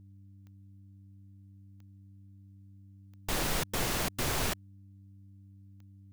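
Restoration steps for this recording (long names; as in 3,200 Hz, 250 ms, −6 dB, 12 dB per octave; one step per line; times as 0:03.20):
click removal
hum removal 98 Hz, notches 3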